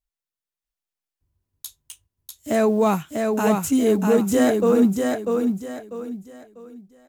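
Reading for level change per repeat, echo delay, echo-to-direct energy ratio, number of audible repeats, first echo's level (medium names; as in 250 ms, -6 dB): -10.0 dB, 645 ms, -3.5 dB, 4, -4.0 dB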